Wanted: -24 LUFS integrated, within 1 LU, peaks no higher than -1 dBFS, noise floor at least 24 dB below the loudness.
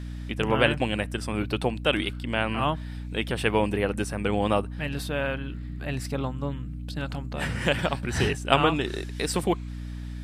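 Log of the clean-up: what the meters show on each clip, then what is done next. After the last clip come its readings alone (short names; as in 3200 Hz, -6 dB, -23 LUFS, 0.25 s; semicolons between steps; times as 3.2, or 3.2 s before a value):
hum 60 Hz; harmonics up to 300 Hz; hum level -33 dBFS; loudness -27.5 LUFS; peak -2.0 dBFS; loudness target -24.0 LUFS
-> de-hum 60 Hz, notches 5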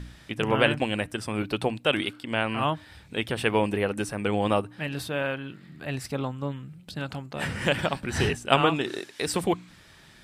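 hum none; loudness -27.5 LUFS; peak -2.0 dBFS; loudness target -24.0 LUFS
-> gain +3.5 dB; limiter -1 dBFS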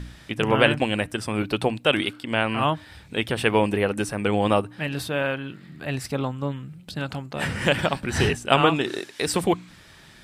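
loudness -24.5 LUFS; peak -1.0 dBFS; noise floor -49 dBFS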